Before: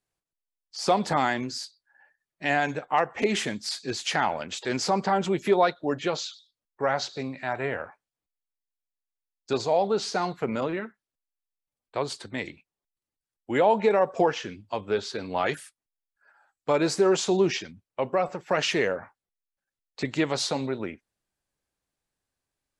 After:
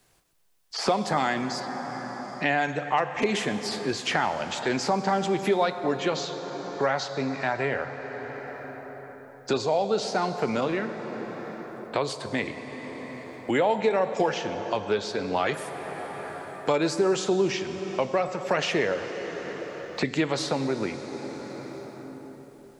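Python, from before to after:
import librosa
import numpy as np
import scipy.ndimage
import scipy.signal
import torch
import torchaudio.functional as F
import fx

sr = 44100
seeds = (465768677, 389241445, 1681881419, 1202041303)

y = fx.lowpass(x, sr, hz=fx.line((1.59, 3200.0), (2.56, 5900.0)), slope=12, at=(1.59, 2.56), fade=0.02)
y = fx.rev_plate(y, sr, seeds[0], rt60_s=3.3, hf_ratio=0.65, predelay_ms=0, drr_db=10.0)
y = fx.band_squash(y, sr, depth_pct=70)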